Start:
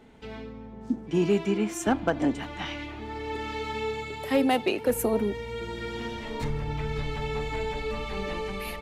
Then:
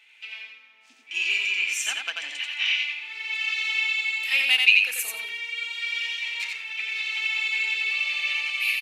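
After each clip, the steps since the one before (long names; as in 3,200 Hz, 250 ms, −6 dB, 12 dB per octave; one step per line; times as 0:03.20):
dynamic equaliser 5,200 Hz, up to +5 dB, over −47 dBFS, Q 0.72
high-pass with resonance 2,500 Hz, resonance Q 6.4
repeating echo 88 ms, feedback 17%, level −3.5 dB
level +1 dB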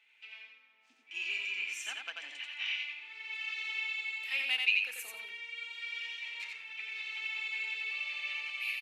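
high-shelf EQ 3,400 Hz −8 dB
level −8.5 dB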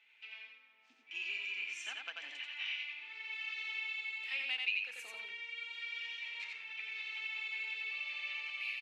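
downward compressor 1.5 to 1, threshold −43 dBFS, peak gain reduction 7.5 dB
low-pass filter 5,900 Hz 12 dB per octave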